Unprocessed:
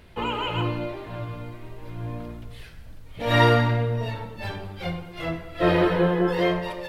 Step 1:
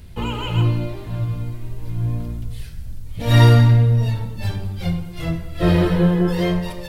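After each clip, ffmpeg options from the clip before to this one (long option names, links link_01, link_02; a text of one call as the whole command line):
ffmpeg -i in.wav -af "bass=frequency=250:gain=15,treble=frequency=4000:gain=13,volume=-2.5dB" out.wav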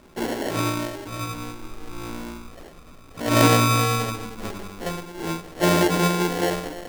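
ffmpeg -i in.wav -af "afftfilt=real='re*pow(10,12/40*sin(2*PI*(1.7*log(max(b,1)*sr/1024/100)/log(2)-(0.37)*(pts-256)/sr)))':imag='im*pow(10,12/40*sin(2*PI*(1.7*log(max(b,1)*sr/1024/100)/log(2)-(0.37)*(pts-256)/sr)))':win_size=1024:overlap=0.75,acrusher=samples=36:mix=1:aa=0.000001,lowshelf=frequency=190:width_type=q:width=1.5:gain=-12.5,volume=-1.5dB" out.wav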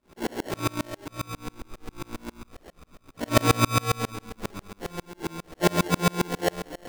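ffmpeg -i in.wav -af "aeval=exprs='val(0)*pow(10,-33*if(lt(mod(-7.4*n/s,1),2*abs(-7.4)/1000),1-mod(-7.4*n/s,1)/(2*abs(-7.4)/1000),(mod(-7.4*n/s,1)-2*abs(-7.4)/1000)/(1-2*abs(-7.4)/1000))/20)':channel_layout=same,volume=4dB" out.wav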